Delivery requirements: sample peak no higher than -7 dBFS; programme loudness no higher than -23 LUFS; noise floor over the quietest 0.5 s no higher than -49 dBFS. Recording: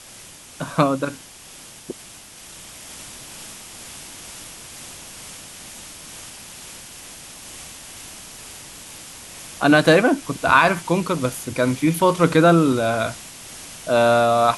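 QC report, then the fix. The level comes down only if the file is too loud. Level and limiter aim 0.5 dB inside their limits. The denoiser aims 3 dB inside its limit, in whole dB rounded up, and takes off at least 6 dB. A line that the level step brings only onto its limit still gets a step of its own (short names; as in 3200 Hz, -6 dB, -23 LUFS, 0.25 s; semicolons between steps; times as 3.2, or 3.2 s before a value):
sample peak -1.5 dBFS: fail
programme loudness -18.0 LUFS: fail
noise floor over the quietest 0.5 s -43 dBFS: fail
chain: denoiser 6 dB, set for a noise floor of -43 dBFS; gain -5.5 dB; limiter -7.5 dBFS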